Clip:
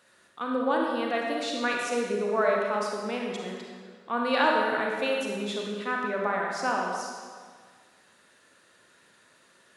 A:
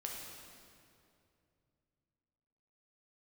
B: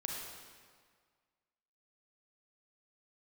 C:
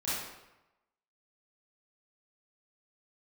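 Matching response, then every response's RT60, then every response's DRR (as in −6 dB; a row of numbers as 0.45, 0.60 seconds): B; 2.6, 1.8, 0.95 seconds; −1.5, −1.0, −11.5 decibels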